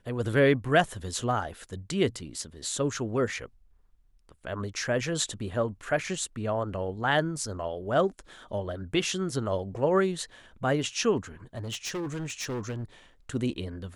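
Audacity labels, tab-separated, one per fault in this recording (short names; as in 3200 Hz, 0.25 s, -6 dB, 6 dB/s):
11.570000	12.840000	clipped -30 dBFS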